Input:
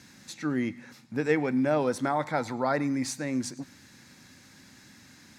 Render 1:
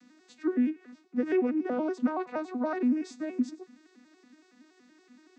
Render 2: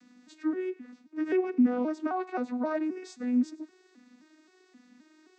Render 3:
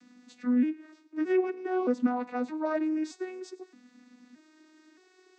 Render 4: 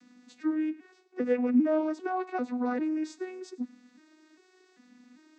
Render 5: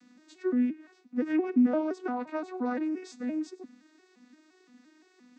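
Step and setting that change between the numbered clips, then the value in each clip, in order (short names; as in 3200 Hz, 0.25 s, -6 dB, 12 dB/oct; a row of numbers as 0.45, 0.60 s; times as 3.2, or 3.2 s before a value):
arpeggiated vocoder, a note every: 94, 263, 621, 397, 173 ms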